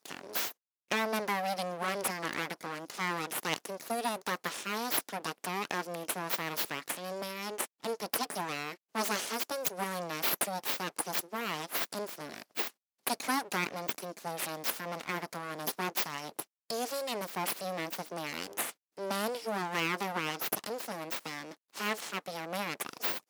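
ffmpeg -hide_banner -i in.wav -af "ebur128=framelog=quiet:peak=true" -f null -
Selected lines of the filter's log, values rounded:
Integrated loudness:
  I:         -34.8 LUFS
  Threshold: -44.8 LUFS
Loudness range:
  LRA:         2.5 LU
  Threshold: -54.8 LUFS
  LRA low:   -35.8 LUFS
  LRA high:  -33.3 LUFS
True peak:
  Peak:      -12.8 dBFS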